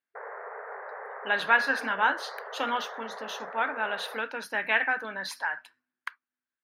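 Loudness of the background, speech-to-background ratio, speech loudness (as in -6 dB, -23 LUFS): -40.5 LUFS, 12.0 dB, -28.5 LUFS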